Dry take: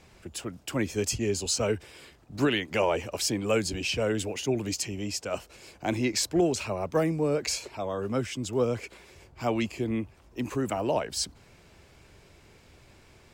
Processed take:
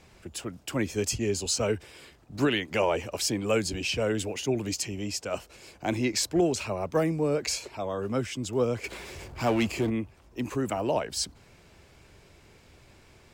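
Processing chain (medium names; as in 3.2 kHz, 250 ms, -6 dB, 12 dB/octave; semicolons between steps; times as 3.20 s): 8.84–9.90 s: power-law waveshaper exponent 0.7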